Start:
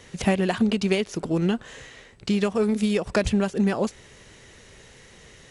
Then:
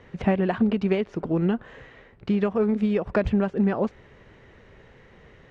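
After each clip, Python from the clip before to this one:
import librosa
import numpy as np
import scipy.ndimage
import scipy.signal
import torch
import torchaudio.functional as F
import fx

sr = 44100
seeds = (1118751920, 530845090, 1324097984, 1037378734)

y = scipy.signal.sosfilt(scipy.signal.butter(2, 1800.0, 'lowpass', fs=sr, output='sos'), x)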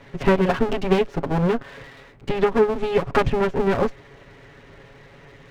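y = fx.lower_of_two(x, sr, delay_ms=7.2)
y = F.gain(torch.from_numpy(y), 6.5).numpy()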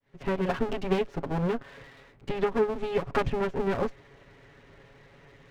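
y = fx.fade_in_head(x, sr, length_s=0.5)
y = F.gain(torch.from_numpy(y), -7.5).numpy()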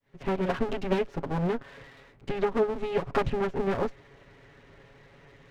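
y = fx.doppler_dist(x, sr, depth_ms=0.49)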